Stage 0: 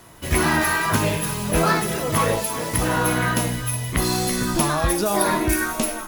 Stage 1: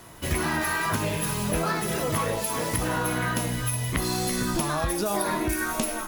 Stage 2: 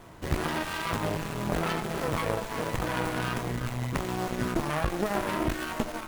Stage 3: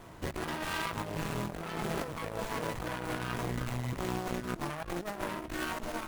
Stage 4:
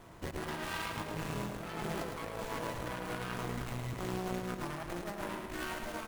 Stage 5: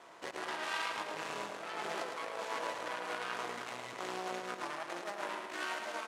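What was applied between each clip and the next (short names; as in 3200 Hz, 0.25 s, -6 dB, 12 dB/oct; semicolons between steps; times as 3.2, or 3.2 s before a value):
compressor, threshold -23 dBFS, peak gain reduction 8.5 dB
bell 3900 Hz -7.5 dB 1.5 oct; added harmonics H 4 -10 dB, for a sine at -10.5 dBFS; running maximum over 9 samples
negative-ratio compressor -32 dBFS, ratio -0.5; gain -3.5 dB
feedback echo 0.108 s, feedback 52%, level -6 dB; gain -4 dB
BPF 520–7600 Hz; gain +2.5 dB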